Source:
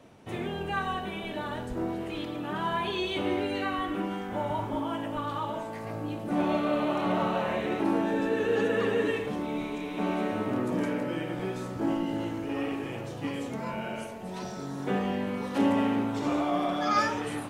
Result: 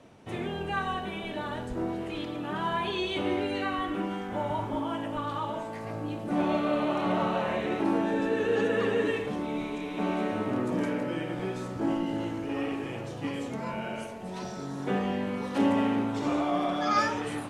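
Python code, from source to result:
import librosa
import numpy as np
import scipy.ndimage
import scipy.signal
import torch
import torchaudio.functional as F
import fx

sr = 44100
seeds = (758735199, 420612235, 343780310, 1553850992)

y = scipy.signal.sosfilt(scipy.signal.butter(2, 11000.0, 'lowpass', fs=sr, output='sos'), x)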